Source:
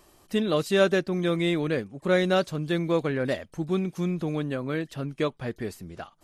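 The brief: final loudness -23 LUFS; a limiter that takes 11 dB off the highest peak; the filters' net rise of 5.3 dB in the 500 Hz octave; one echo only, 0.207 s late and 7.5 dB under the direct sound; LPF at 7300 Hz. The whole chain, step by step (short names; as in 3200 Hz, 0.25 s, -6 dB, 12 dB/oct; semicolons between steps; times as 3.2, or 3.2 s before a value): LPF 7300 Hz; bell 500 Hz +6.5 dB; limiter -17 dBFS; echo 0.207 s -7.5 dB; gain +3.5 dB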